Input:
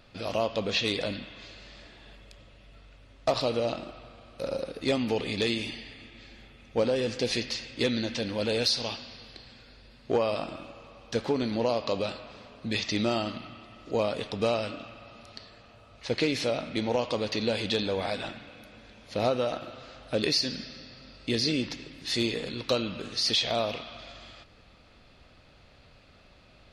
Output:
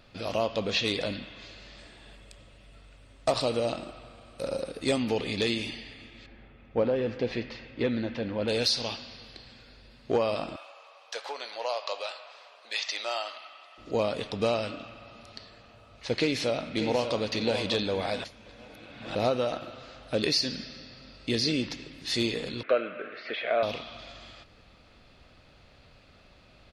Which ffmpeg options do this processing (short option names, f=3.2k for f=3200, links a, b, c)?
-filter_complex "[0:a]asettb=1/sr,asplit=3[a][b][c];[a]atrim=end=1.784[d];[b]atrim=start=1.78:end=5.02,asetpts=PTS-STARTPTS,afade=t=in:d=0.004:c=qsin,afade=t=out:st=3.236:d=0.004:c=qsin,equalizer=f=8.4k:t=o:w=0.25:g=14[e];[c]atrim=start=5.016[f];[d][e]acrossfade=d=0.004:c1=hsin:c2=qsin[g];[g][f]acrossfade=d=0.004:c1=qsin:c2=hsin,asettb=1/sr,asplit=3[h][i][j];[h]atrim=end=6.264[k];[i]atrim=start=6.26:end=8.48,asetpts=PTS-STARTPTS,afade=t=in:d=0.004:c=qsin,afade=t=out:st=2.216:d=0.004:c=qsin,lowpass=2k[l];[j]atrim=start=8.476[m];[k][l]acrossfade=d=0.004:c1=hsin:c2=qsin[n];[n][m]acrossfade=d=0.004:c1=qsin:c2=hsin,asettb=1/sr,asplit=3[o][p][q];[o]atrim=end=10.564[r];[p]atrim=start=10.56:end=13.78,asetpts=PTS-STARTPTS,afade=t=in:d=0.004:c=qsin,afade=t=out:st=3.216:d=0.004:c=qsin,highpass=f=630:w=0.5412,highpass=f=630:w=1.3066[s];[q]atrim=start=13.776[t];[r][s]acrossfade=d=0.004:c1=hsin:c2=qsin[u];[u][t]acrossfade=d=0.004:c1=qsin:c2=hsin,asplit=2[v][w];[w]afade=t=in:st=16.16:d=0.01,afade=t=out:st=17.19:d=0.01,aecho=0:1:590|1180|1770|2360:0.398107|0.139338|0.0487681|0.0170688[x];[v][x]amix=inputs=2:normalize=0,asettb=1/sr,asplit=3[y][z][aa];[y]atrim=end=22.634[ab];[z]atrim=start=22.63:end=23.63,asetpts=PTS-STARTPTS,afade=t=in:d=0.004:c=qsin,afade=t=out:st=0.996:d=0.004:c=qsin,highpass=390,equalizer=f=430:t=q:w=4:g=4,equalizer=f=620:t=q:w=4:g=7,equalizer=f=900:t=q:w=4:g=-10,equalizer=f=1.5k:t=q:w=4:g=10,equalizer=f=2.2k:t=q:w=4:g=7,lowpass=f=2.3k:w=0.5412,lowpass=f=2.3k:w=1.3066[ac];[aa]atrim=start=23.626[ad];[ab][ac]acrossfade=d=0.004:c1=hsin:c2=qsin[ae];[ae][ad]acrossfade=d=0.004:c1=qsin:c2=hsin,asplit=3[af][ag][ah];[af]atrim=end=18.242[ai];[ag]atrim=start=18.238:end=19.152,asetpts=PTS-STARTPTS,areverse[aj];[ah]atrim=start=19.148[ak];[ai][aj]acrossfade=d=0.004:c1=hsin:c2=hsin[al];[al][ak]acrossfade=d=0.004:c1=hsin:c2=hsin"